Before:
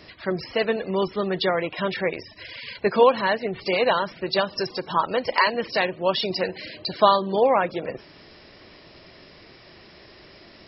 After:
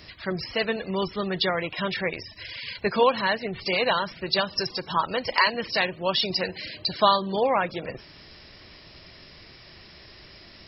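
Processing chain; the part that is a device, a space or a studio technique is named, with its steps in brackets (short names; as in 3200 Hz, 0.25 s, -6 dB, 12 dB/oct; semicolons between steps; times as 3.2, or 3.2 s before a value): smiley-face EQ (low shelf 130 Hz +6.5 dB; bell 410 Hz -5.5 dB 2.5 oct; high shelf 5100 Hz +7 dB)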